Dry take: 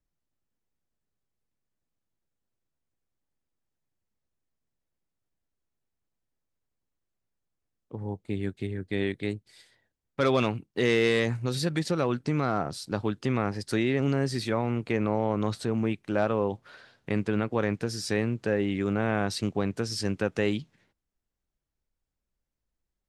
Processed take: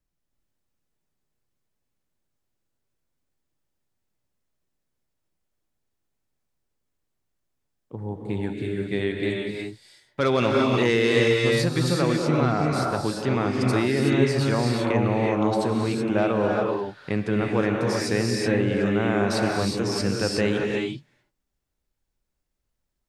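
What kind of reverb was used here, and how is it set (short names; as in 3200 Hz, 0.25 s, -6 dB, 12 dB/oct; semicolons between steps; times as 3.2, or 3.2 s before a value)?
non-linear reverb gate 0.4 s rising, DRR -1 dB; gain +2 dB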